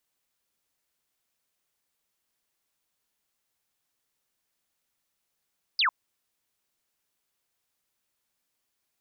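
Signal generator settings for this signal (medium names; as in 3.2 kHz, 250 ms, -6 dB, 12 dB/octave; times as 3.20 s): laser zap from 5.1 kHz, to 930 Hz, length 0.10 s sine, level -20.5 dB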